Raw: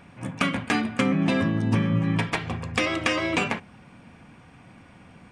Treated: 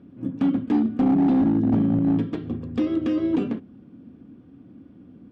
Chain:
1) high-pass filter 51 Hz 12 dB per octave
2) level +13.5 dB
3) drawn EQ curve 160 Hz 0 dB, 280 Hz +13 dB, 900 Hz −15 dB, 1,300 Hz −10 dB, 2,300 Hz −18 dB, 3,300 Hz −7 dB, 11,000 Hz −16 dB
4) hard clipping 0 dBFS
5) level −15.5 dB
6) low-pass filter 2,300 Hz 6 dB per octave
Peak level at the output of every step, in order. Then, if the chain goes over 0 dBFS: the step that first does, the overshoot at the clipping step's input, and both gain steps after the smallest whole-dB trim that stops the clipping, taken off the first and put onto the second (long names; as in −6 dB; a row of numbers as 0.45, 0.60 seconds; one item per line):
−8.5, +5.0, +9.5, 0.0, −15.5, −15.5 dBFS
step 2, 9.5 dB
step 2 +3.5 dB, step 5 −5.5 dB